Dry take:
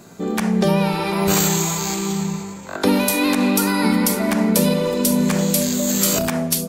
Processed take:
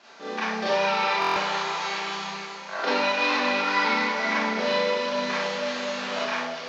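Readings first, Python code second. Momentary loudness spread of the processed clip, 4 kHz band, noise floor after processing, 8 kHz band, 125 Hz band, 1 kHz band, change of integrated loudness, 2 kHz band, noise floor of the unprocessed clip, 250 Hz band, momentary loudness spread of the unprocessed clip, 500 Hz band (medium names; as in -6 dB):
8 LU, -3.0 dB, -39 dBFS, -21.0 dB, -22.5 dB, +0.5 dB, -6.5 dB, +2.0 dB, -33 dBFS, -16.5 dB, 6 LU, -5.0 dB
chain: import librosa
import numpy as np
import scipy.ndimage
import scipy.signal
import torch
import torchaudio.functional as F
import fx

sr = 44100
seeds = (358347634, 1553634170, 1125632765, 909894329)

y = fx.cvsd(x, sr, bps=32000)
y = scipy.signal.sosfilt(scipy.signal.butter(2, 820.0, 'highpass', fs=sr, output='sos'), y)
y = fx.air_absorb(y, sr, metres=85.0)
y = y + 10.0 ** (-13.0 / 20.0) * np.pad(y, (int(380 * sr / 1000.0), 0))[:len(y)]
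y = fx.rev_schroeder(y, sr, rt60_s=0.45, comb_ms=28, drr_db=-7.0)
y = fx.buffer_glitch(y, sr, at_s=(1.2,), block=1024, repeats=6)
y = F.gain(torch.from_numpy(y), -4.0).numpy()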